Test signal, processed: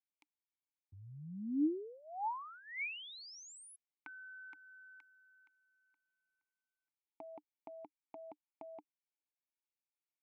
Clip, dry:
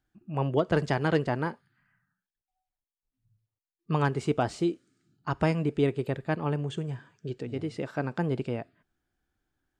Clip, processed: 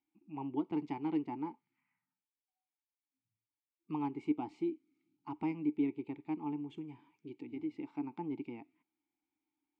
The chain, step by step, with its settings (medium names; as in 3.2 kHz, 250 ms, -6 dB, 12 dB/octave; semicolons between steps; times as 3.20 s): vowel filter u; tape noise reduction on one side only encoder only